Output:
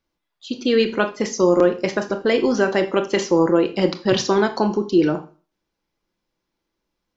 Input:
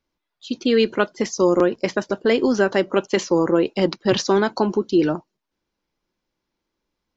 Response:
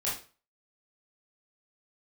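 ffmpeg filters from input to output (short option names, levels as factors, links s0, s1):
-filter_complex "[0:a]asplit=2[s0][s1];[1:a]atrim=start_sample=2205,adelay=6[s2];[s1][s2]afir=irnorm=-1:irlink=0,volume=0.211[s3];[s0][s3]amix=inputs=2:normalize=0"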